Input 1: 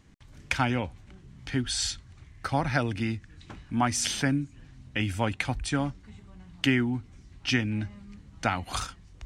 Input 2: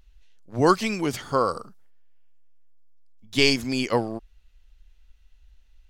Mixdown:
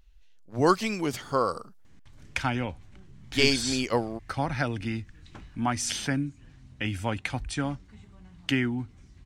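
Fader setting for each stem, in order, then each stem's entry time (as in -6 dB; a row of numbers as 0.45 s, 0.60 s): -2.0 dB, -3.0 dB; 1.85 s, 0.00 s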